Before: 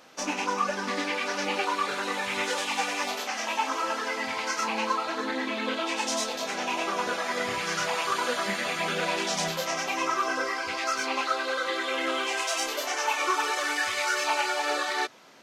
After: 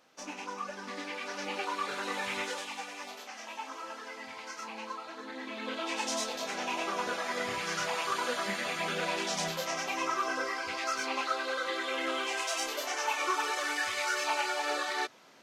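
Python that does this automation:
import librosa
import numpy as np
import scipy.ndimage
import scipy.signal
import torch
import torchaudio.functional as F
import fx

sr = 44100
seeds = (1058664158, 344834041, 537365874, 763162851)

y = fx.gain(x, sr, db=fx.line((0.71, -11.5), (2.28, -4.0), (2.85, -13.0), (5.24, -13.0), (5.94, -4.5)))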